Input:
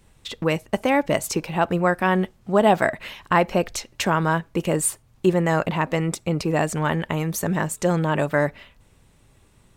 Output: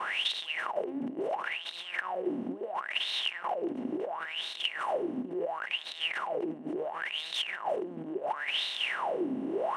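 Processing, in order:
compressor on every frequency bin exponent 0.2
compressor whose output falls as the input rises −15 dBFS, ratio −0.5
downward expander −19 dBFS
LFO wah 0.72 Hz 250–3,900 Hz, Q 12
in parallel at −1 dB: brickwall limiter −24 dBFS, peak gain reduction 10.5 dB
on the sum: parametric band 3,000 Hz +11 dB 0.53 octaves
level −8.5 dB

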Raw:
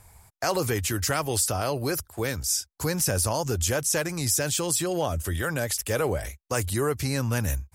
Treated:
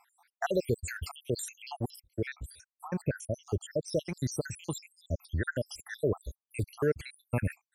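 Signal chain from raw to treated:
time-frequency cells dropped at random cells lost 81%
low-pass filter 2,900 Hz 6 dB per octave, from 0:01.96 1,200 Hz, from 0:03.88 2,200 Hz

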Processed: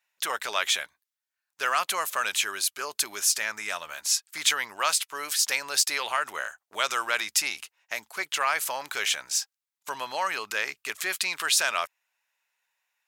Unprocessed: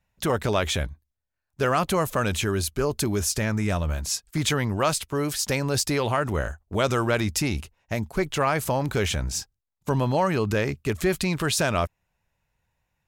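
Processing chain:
high-pass filter 1,300 Hz 12 dB per octave
level +3.5 dB

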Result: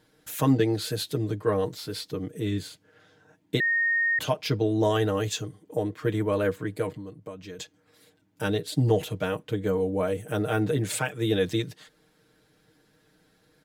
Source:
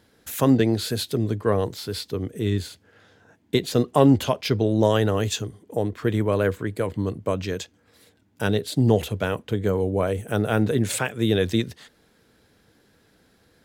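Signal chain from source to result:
comb filter 6.5 ms, depth 78%
0:03.60–0:04.19: beep over 1,850 Hz −15.5 dBFS
0:06.93–0:07.59: downward compressor 3 to 1, threshold −35 dBFS, peak gain reduction 13.5 dB
level −5.5 dB

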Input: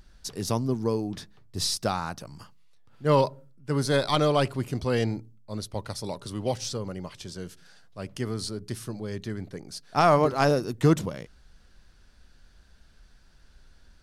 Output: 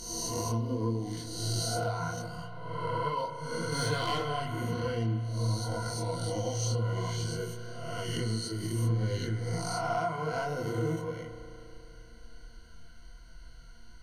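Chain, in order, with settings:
peak hold with a rise ahead of every peak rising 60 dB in 0.99 s
EQ curve with evenly spaced ripples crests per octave 1.9, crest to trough 17 dB
harmonic and percussive parts rebalanced percussive −7 dB
0:02.35–0:03.17: high-shelf EQ 11,000 Hz −10 dB
0:03.72–0:04.22: leveller curve on the samples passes 2
downward compressor 5 to 1, threshold −31 dBFS, peak gain reduction 19 dB
multi-voice chorus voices 6, 0.47 Hz, delay 23 ms, depth 4.7 ms
convolution reverb RT60 3.2 s, pre-delay 35 ms, DRR 8 dB
level +2.5 dB

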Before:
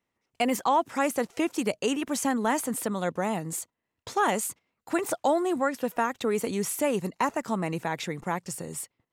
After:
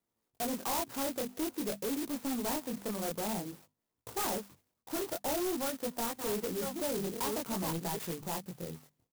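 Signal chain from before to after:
0:05.50–0:07.97: delay that plays each chunk backwards 652 ms, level −6 dB
mains-hum notches 50/100/150/200/250 Hz
chorus effect 0.5 Hz, delay 17.5 ms, depth 7.9 ms
soft clipping −30 dBFS, distortion −8 dB
downsampling to 8,000 Hz
converter with an unsteady clock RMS 0.14 ms

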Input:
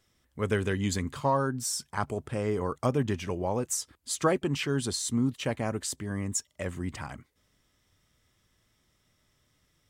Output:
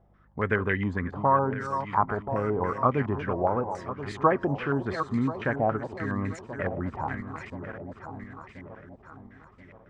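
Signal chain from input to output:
feedback delay that plays each chunk backwards 515 ms, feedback 65%, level −11.5 dB
in parallel at +3 dB: downward compressor, threshold −40 dBFS, peak gain reduction 19 dB
on the sum: hum with harmonics 50 Hz, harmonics 4, −61 dBFS
low-pass on a step sequencer 7.2 Hz 750–2,100 Hz
level −2 dB

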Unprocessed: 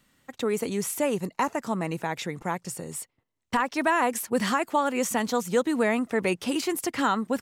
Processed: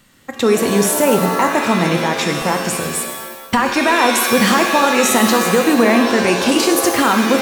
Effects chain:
boost into a limiter +17.5 dB
reverb with rising layers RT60 1.2 s, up +7 semitones, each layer −2 dB, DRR 5 dB
level −5 dB

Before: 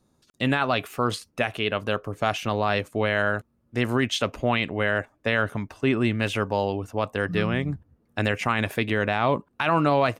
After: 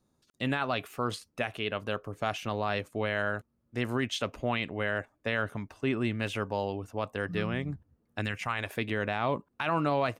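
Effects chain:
0:08.20–0:08.74: parametric band 780 Hz → 130 Hz −11.5 dB 1.2 octaves
level −7 dB

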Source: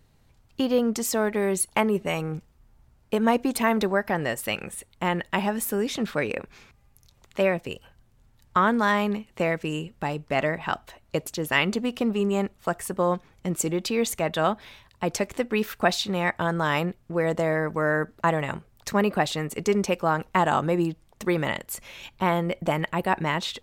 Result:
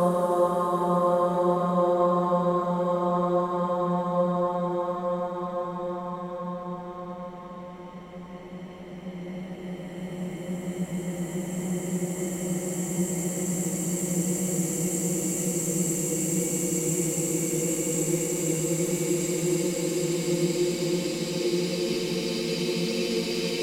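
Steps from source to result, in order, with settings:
extreme stretch with random phases 28×, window 0.50 s, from 0:13.02

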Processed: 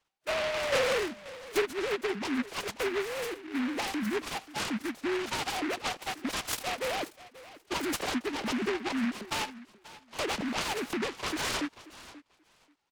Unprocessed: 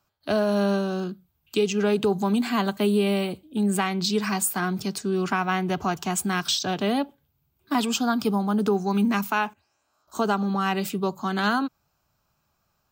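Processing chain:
three sine waves on the formant tracks
downward compressor 6 to 1, threshold −28 dBFS, peak gain reduction 16.5 dB
soft clipping −22.5 dBFS, distortion −23 dB
0:00.72–0:01.62: graphic EQ with 10 bands 250 Hz −10 dB, 500 Hz +9 dB, 2,000 Hz +10 dB
on a send: repeating echo 534 ms, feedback 16%, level −17.5 dB
on the sum: short delay modulated by noise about 1,600 Hz, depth 0.19 ms

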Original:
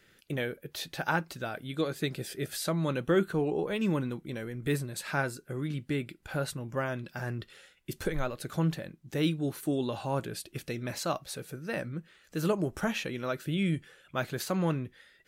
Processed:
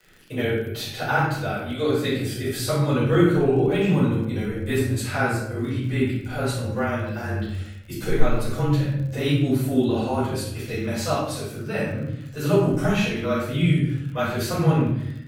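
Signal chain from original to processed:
rectangular room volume 220 cubic metres, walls mixed, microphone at 5.2 metres
surface crackle 54 per second −32 dBFS
frequency shifter −25 Hz
level −6 dB

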